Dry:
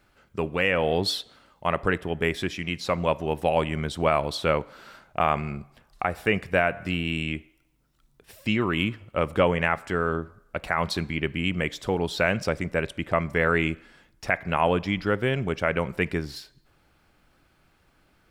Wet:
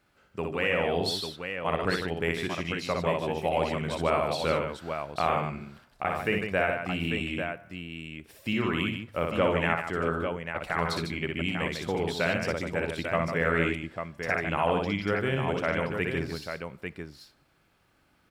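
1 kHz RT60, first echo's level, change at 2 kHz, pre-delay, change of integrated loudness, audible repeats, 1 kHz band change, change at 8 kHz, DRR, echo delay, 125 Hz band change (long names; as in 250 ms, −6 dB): no reverb audible, −4.0 dB, −2.5 dB, no reverb audible, −3.0 dB, 3, −2.5 dB, −2.5 dB, no reverb audible, 60 ms, −3.0 dB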